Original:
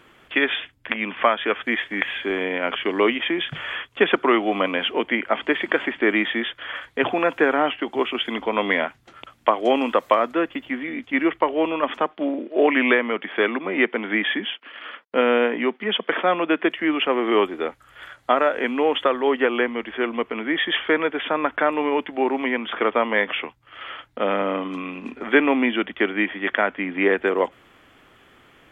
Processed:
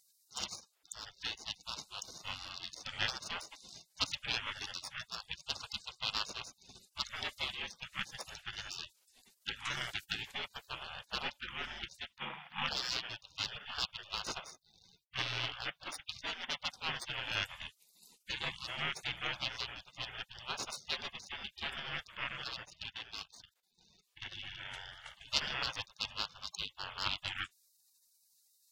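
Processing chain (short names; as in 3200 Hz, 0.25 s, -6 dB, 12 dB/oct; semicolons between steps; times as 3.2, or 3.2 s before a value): tracing distortion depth 0.058 ms; spectral gate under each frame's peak -30 dB weak; 22.63–24.32 level quantiser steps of 12 dB; gain +4.5 dB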